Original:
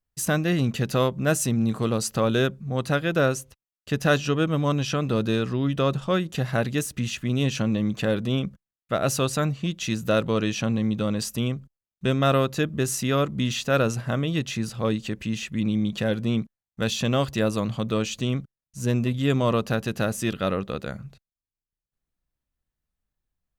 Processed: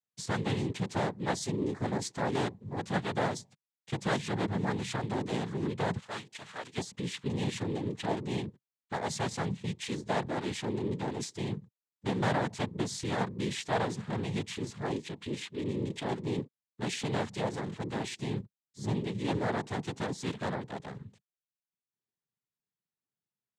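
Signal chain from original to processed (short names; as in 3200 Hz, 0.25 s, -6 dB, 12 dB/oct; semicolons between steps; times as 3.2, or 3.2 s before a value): 5.98–6.77 HPF 1400 Hz 6 dB/oct; noise vocoder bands 6; gain -8.5 dB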